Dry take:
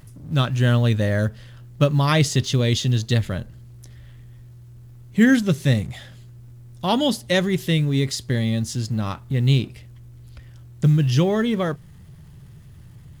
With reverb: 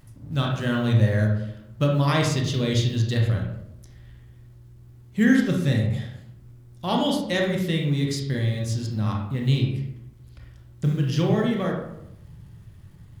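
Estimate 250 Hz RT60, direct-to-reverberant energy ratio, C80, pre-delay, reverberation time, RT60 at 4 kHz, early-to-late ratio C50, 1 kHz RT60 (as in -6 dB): 0.95 s, 0.0 dB, 7.0 dB, 25 ms, 0.80 s, 0.45 s, 3.5 dB, 0.75 s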